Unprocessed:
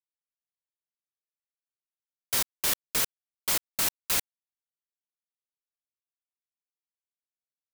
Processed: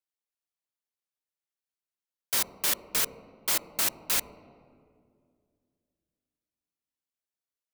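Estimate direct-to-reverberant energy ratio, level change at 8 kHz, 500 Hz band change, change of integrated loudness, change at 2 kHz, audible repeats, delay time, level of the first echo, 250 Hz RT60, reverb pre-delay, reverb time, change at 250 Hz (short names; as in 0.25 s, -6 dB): 11.5 dB, 0.0 dB, +0.5 dB, 0.0 dB, 0.0 dB, none, none, none, 2.8 s, 3 ms, 2.3 s, -0.5 dB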